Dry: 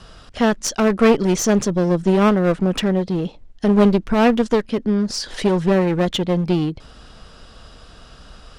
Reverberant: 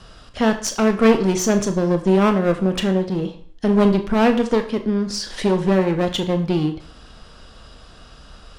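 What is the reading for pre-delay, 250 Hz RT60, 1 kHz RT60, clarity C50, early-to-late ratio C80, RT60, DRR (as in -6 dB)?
22 ms, 0.55 s, 0.50 s, 11.5 dB, 15.0 dB, 0.50 s, 6.5 dB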